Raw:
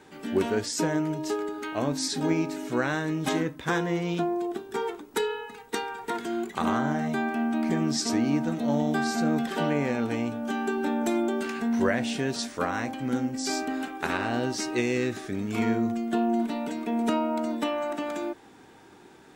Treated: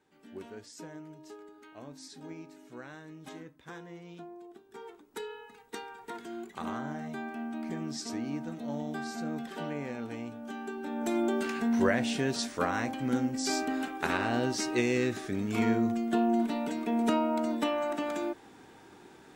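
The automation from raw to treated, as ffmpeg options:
-af "volume=-1.5dB,afade=t=in:st=4.62:d=0.88:silence=0.375837,afade=t=in:st=10.87:d=0.42:silence=0.354813"

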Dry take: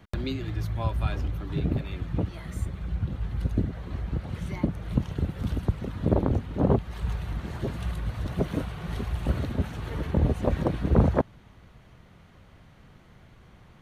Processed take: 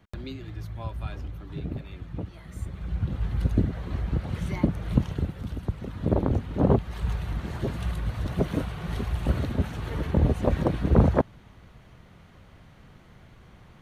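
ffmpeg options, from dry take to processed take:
-af "volume=10dB,afade=t=in:st=2.48:d=0.76:silence=0.334965,afade=t=out:st=4.99:d=0.48:silence=0.375837,afade=t=in:st=5.47:d=1.11:silence=0.446684"

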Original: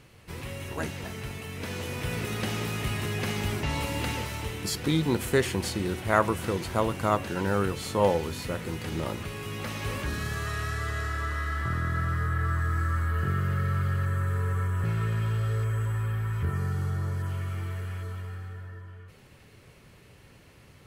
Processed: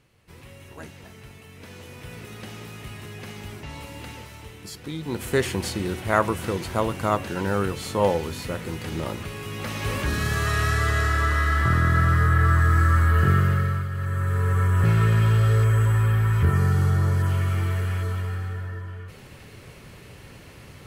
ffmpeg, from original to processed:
-af "volume=21dB,afade=t=in:st=4.99:d=0.42:silence=0.316228,afade=t=in:st=9.53:d=1.13:silence=0.446684,afade=t=out:st=13.34:d=0.55:silence=0.251189,afade=t=in:st=13.89:d=0.97:silence=0.251189"

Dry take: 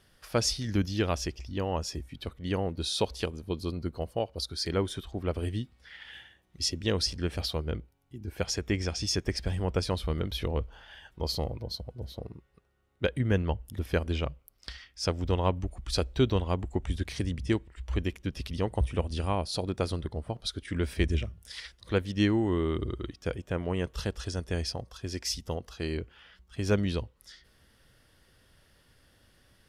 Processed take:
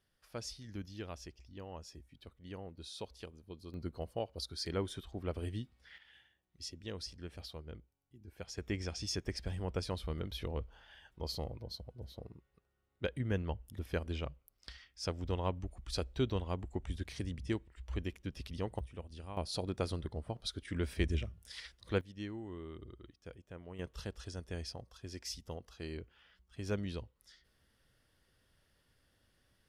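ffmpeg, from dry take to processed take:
-af "asetnsamples=n=441:p=0,asendcmd='3.74 volume volume -7.5dB;5.98 volume volume -15.5dB;8.58 volume volume -8.5dB;18.79 volume volume -17dB;19.37 volume volume -6dB;22.01 volume volume -18dB;23.79 volume volume -10.5dB',volume=-16.5dB"

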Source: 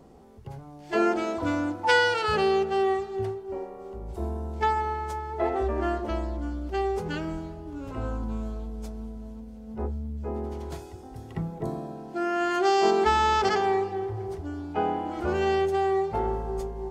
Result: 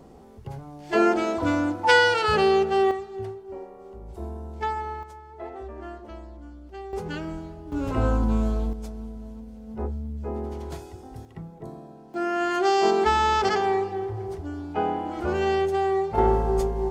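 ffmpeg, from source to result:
-af "asetnsamples=n=441:p=0,asendcmd='2.91 volume volume -3.5dB;5.03 volume volume -11dB;6.93 volume volume -1dB;7.72 volume volume 9dB;8.73 volume volume 1dB;11.25 volume volume -7.5dB;12.14 volume volume 1dB;16.18 volume volume 8dB',volume=3.5dB"

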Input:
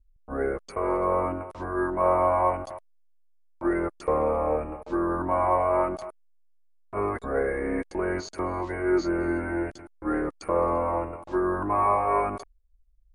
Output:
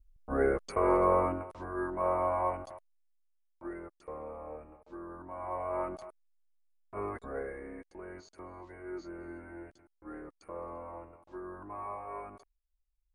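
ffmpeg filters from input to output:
-af "volume=9dB,afade=t=out:st=0.99:d=0.62:silence=0.398107,afade=t=out:st=2.57:d=1.31:silence=0.298538,afade=t=in:st=5.35:d=0.52:silence=0.354813,afade=t=out:st=7.14:d=0.62:silence=0.375837"

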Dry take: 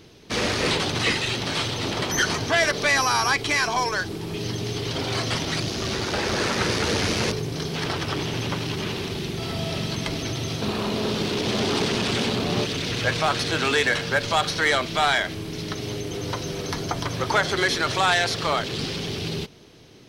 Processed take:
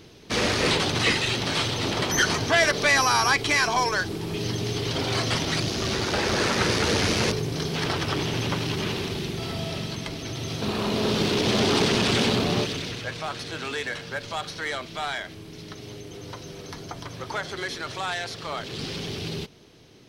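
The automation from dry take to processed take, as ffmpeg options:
-af "volume=15dB,afade=t=out:st=8.9:d=1.28:silence=0.473151,afade=t=in:st=10.18:d=1.04:silence=0.398107,afade=t=out:st=12.35:d=0.69:silence=0.266073,afade=t=in:st=18.48:d=0.48:silence=0.473151"

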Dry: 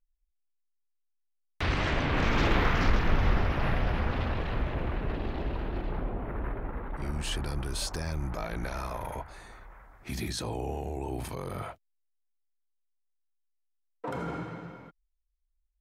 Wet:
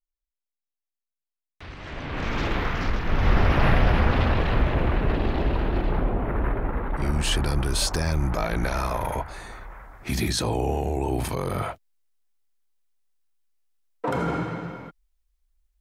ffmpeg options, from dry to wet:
-af "volume=9dB,afade=t=in:st=1.79:d=0.53:silence=0.281838,afade=t=in:st=3.05:d=0.49:silence=0.316228"

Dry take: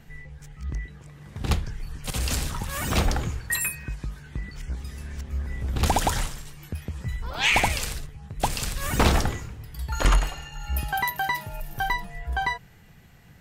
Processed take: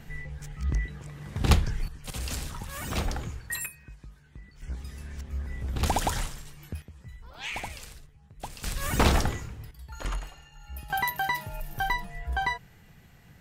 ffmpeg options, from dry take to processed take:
-af "asetnsamples=n=441:p=0,asendcmd='1.88 volume volume -7dB;3.66 volume volume -14dB;4.62 volume volume -4dB;6.82 volume volume -14.5dB;8.64 volume volume -2dB;9.71 volume volume -13dB;10.9 volume volume -2dB',volume=3.5dB"

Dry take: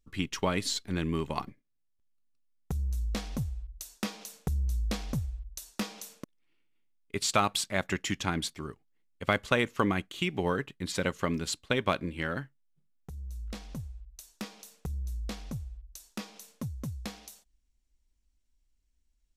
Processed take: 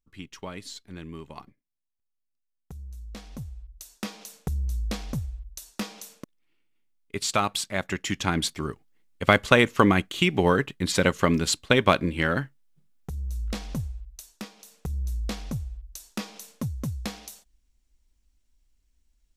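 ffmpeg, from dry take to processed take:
-af "volume=16.5dB,afade=t=in:st=3.06:d=1.27:silence=0.298538,afade=t=in:st=7.99:d=0.69:silence=0.446684,afade=t=out:st=13.84:d=0.7:silence=0.298538,afade=t=in:st=14.54:d=0.5:silence=0.398107"

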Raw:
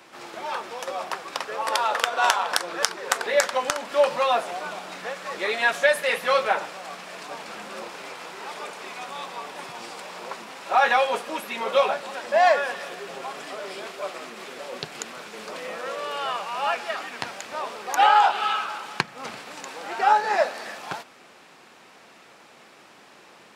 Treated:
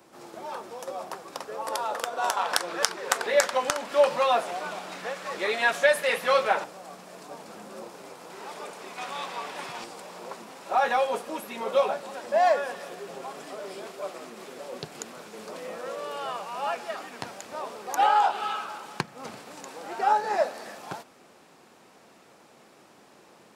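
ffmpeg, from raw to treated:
-af "asetnsamples=n=441:p=0,asendcmd='2.37 equalizer g -2.5;6.64 equalizer g -13.5;8.3 equalizer g -7.5;8.98 equalizer g 0.5;9.84 equalizer g -9',equalizer=f=2.4k:t=o:w=2.7:g=-12.5"

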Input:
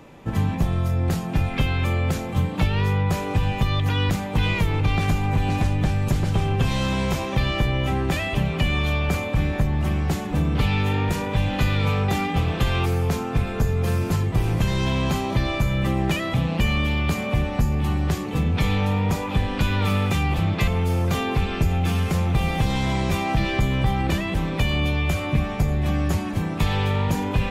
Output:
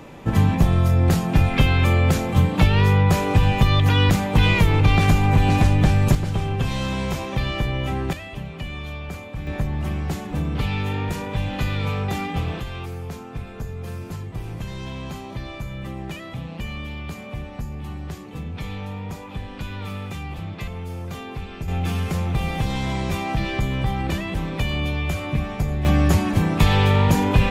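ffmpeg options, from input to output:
-af "asetnsamples=n=441:p=0,asendcmd='6.15 volume volume -2dB;8.13 volume volume -10dB;9.47 volume volume -3dB;12.6 volume volume -10dB;21.68 volume volume -2dB;25.85 volume volume 5.5dB',volume=5dB"

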